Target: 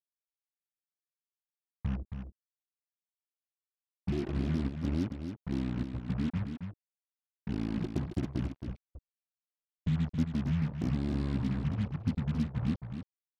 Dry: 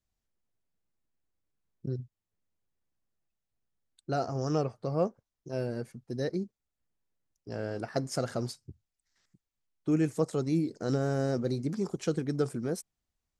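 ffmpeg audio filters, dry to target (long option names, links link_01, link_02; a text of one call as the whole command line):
ffmpeg -i in.wav -filter_complex "[0:a]highpass=frequency=130:poles=1,afwtdn=0.0141,lowshelf=frequency=190:gain=-5,acrossover=split=590[link_01][link_02];[link_01]acontrast=73[link_03];[link_02]alimiter=level_in=11.5dB:limit=-24dB:level=0:latency=1:release=58,volume=-11.5dB[link_04];[link_03][link_04]amix=inputs=2:normalize=0,acompressor=threshold=-40dB:ratio=3,asetrate=22696,aresample=44100,atempo=1.94306,acrusher=bits=7:mix=0:aa=0.5,aecho=1:1:271:0.422,volume=7.5dB" out.wav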